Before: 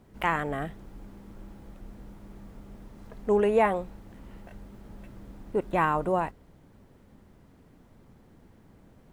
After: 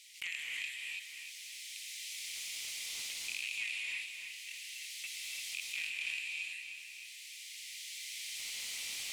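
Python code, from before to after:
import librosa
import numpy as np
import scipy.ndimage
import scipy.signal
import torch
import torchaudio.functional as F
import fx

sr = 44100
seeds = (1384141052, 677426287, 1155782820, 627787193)

p1 = fx.rattle_buzz(x, sr, strikes_db=-33.0, level_db=-15.0)
p2 = fx.recorder_agc(p1, sr, target_db=-15.5, rise_db_per_s=13.0, max_gain_db=30)
p3 = scipy.signal.sosfilt(scipy.signal.butter(12, 2100.0, 'highpass', fs=sr, output='sos'), p2)
p4 = 10.0 ** (-19.0 / 20.0) * np.tanh(p3 / 10.0 ** (-19.0 / 20.0))
p5 = np.diff(p4, prepend=0.0)
p6 = np.clip(p5, -10.0 ** (-40.0 / 20.0), 10.0 ** (-40.0 / 20.0))
p7 = fx.air_absorb(p6, sr, metres=71.0)
p8 = p7 + fx.echo_feedback(p7, sr, ms=305, feedback_pct=39, wet_db=-14, dry=0)
p9 = fx.rev_gated(p8, sr, seeds[0], gate_ms=360, shape='rising', drr_db=-1.5)
p10 = fx.env_flatten(p9, sr, amount_pct=50)
y = F.gain(torch.from_numpy(p10), 6.0).numpy()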